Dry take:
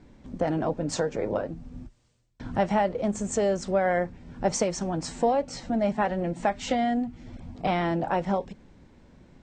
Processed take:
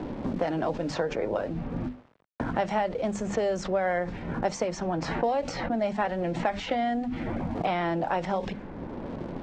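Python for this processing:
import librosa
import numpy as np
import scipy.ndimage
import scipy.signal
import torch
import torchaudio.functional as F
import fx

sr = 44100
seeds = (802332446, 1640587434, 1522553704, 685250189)

p1 = fx.env_lowpass(x, sr, base_hz=890.0, full_db=-21.0)
p2 = fx.hum_notches(p1, sr, base_hz=50, count=5)
p3 = fx.env_lowpass(p2, sr, base_hz=1400.0, full_db=-25.5)
p4 = fx.low_shelf(p3, sr, hz=280.0, db=-7.5)
p5 = fx.over_compress(p4, sr, threshold_db=-47.0, ratio=-1.0)
p6 = p4 + (p5 * librosa.db_to_amplitude(1.0))
p7 = np.sign(p6) * np.maximum(np.abs(p6) - 10.0 ** (-57.0 / 20.0), 0.0)
p8 = fx.air_absorb(p7, sr, metres=59.0)
y = fx.band_squash(p8, sr, depth_pct=70)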